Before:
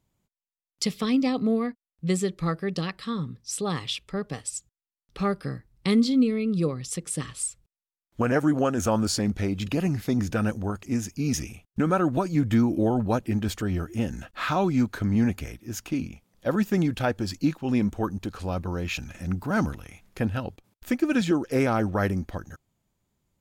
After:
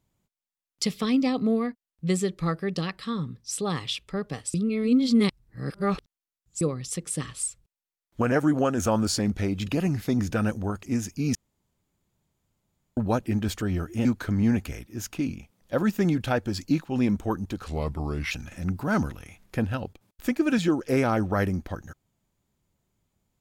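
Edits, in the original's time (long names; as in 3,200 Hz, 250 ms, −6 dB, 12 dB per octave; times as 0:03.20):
0:04.54–0:06.61: reverse
0:11.35–0:12.97: fill with room tone
0:14.05–0:14.78: remove
0:18.41–0:18.94: play speed 84%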